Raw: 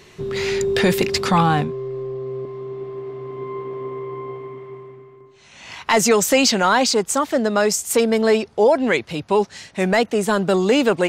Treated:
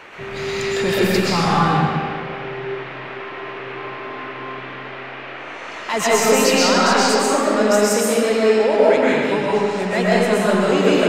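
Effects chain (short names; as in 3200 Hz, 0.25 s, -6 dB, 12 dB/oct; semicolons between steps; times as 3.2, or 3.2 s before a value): band noise 260–2500 Hz -35 dBFS; digital reverb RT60 2.1 s, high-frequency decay 0.8×, pre-delay 85 ms, DRR -7.5 dB; gain -6.5 dB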